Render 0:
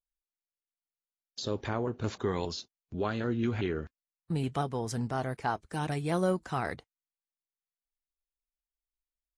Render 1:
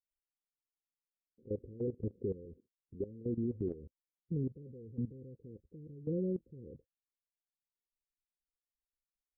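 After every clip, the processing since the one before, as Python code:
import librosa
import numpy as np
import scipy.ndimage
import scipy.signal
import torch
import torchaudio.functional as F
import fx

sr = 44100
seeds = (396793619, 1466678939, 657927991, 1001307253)

y = scipy.signal.sosfilt(scipy.signal.cheby1(10, 1.0, 530.0, 'lowpass', fs=sr, output='sos'), x)
y = fx.level_steps(y, sr, step_db=16)
y = F.gain(torch.from_numpy(y), -1.5).numpy()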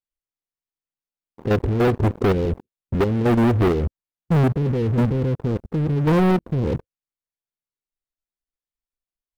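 y = fx.tilt_eq(x, sr, slope=-1.5)
y = fx.leveller(y, sr, passes=5)
y = F.gain(torch.from_numpy(y), 8.5).numpy()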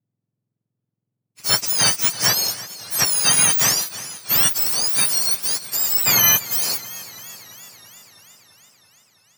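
y = fx.octave_mirror(x, sr, pivot_hz=1500.0)
y = fx.leveller(y, sr, passes=1)
y = fx.echo_warbled(y, sr, ms=333, feedback_pct=69, rate_hz=2.8, cents=66, wet_db=-16.5)
y = F.gain(torch.from_numpy(y), 4.5).numpy()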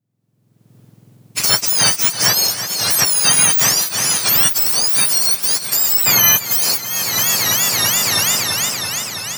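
y = fx.recorder_agc(x, sr, target_db=-9.5, rise_db_per_s=39.0, max_gain_db=30)
y = F.gain(torch.from_numpy(y), 3.0).numpy()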